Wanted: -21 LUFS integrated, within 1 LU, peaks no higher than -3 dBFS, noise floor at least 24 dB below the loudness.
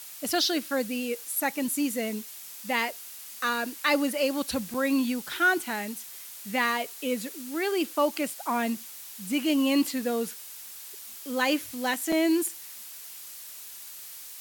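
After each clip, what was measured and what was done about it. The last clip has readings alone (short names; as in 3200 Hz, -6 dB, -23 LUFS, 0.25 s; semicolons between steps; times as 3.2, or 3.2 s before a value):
dropouts 2; longest dropout 4.3 ms; noise floor -43 dBFS; noise floor target -52 dBFS; loudness -28.0 LUFS; peak -10.5 dBFS; loudness target -21.0 LUFS
-> interpolate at 4.74/12.12, 4.3 ms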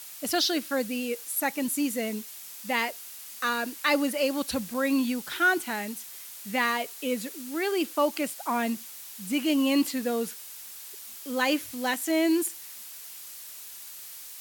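dropouts 0; noise floor -43 dBFS; noise floor target -52 dBFS
-> noise print and reduce 9 dB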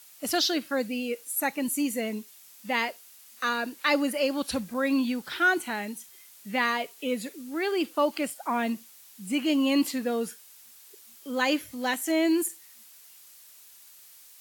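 noise floor -52 dBFS; loudness -28.0 LUFS; peak -10.5 dBFS; loudness target -21.0 LUFS
-> gain +7 dB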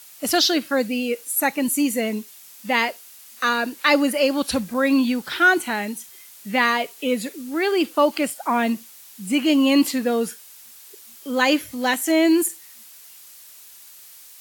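loudness -21.0 LUFS; peak -3.5 dBFS; noise floor -45 dBFS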